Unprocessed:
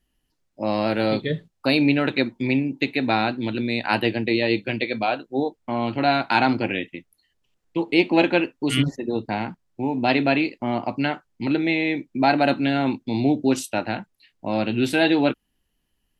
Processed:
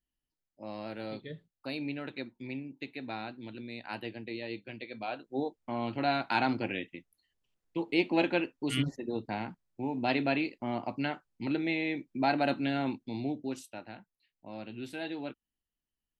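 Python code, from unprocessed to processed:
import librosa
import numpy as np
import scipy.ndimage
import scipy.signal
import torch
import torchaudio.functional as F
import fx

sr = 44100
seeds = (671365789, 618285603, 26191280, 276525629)

y = fx.gain(x, sr, db=fx.line((4.87, -18.0), (5.33, -9.5), (12.82, -9.5), (13.79, -19.5)))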